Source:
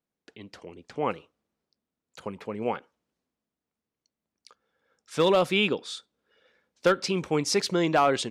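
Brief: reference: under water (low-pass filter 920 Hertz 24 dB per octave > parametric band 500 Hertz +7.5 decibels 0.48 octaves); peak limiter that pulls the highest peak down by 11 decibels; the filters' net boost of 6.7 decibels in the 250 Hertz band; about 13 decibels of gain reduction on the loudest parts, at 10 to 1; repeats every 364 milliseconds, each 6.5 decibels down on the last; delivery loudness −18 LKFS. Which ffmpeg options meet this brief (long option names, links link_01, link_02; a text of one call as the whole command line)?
ffmpeg -i in.wav -af "equalizer=frequency=250:width_type=o:gain=9,acompressor=threshold=-28dB:ratio=10,alimiter=level_in=3.5dB:limit=-24dB:level=0:latency=1,volume=-3.5dB,lowpass=frequency=920:width=0.5412,lowpass=frequency=920:width=1.3066,equalizer=frequency=500:width_type=o:width=0.48:gain=7.5,aecho=1:1:364|728|1092|1456|1820|2184:0.473|0.222|0.105|0.0491|0.0231|0.0109,volume=19.5dB" out.wav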